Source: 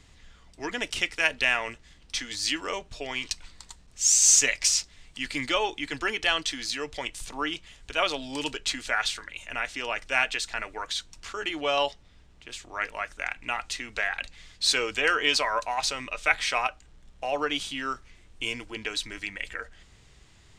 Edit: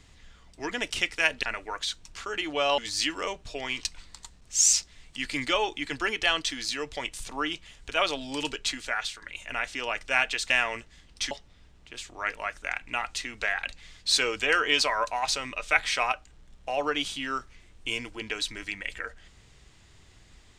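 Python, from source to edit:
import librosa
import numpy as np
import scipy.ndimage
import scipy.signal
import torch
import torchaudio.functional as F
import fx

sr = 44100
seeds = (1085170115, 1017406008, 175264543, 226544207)

y = fx.edit(x, sr, fx.swap(start_s=1.43, length_s=0.81, other_s=10.51, other_length_s=1.35),
    fx.cut(start_s=4.19, length_s=0.55),
    fx.fade_out_to(start_s=8.6, length_s=0.63, floor_db=-7.5), tone=tone)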